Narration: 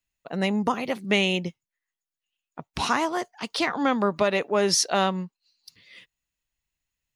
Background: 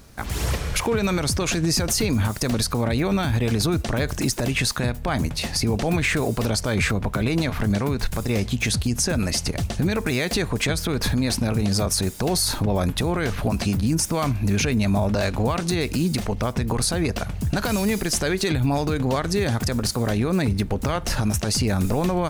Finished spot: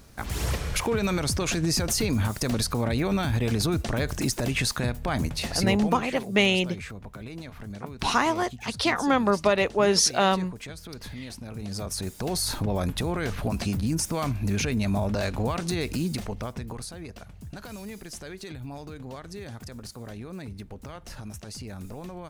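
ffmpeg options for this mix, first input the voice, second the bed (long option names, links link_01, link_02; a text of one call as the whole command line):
ffmpeg -i stem1.wav -i stem2.wav -filter_complex "[0:a]adelay=5250,volume=1dB[link_01];[1:a]volume=8.5dB,afade=type=out:start_time=5.59:duration=0.44:silence=0.211349,afade=type=in:start_time=11.45:duration=1.08:silence=0.251189,afade=type=out:start_time=15.92:duration=1:silence=0.251189[link_02];[link_01][link_02]amix=inputs=2:normalize=0" out.wav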